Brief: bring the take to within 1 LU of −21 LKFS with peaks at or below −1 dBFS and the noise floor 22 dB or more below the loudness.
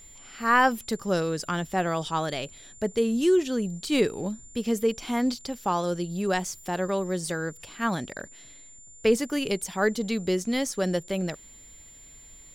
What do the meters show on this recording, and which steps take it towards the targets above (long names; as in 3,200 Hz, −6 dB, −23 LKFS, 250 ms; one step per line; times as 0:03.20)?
interfering tone 7,200 Hz; level of the tone −48 dBFS; integrated loudness −27.0 LKFS; sample peak −9.0 dBFS; target loudness −21.0 LKFS
→ notch filter 7,200 Hz, Q 30
level +6 dB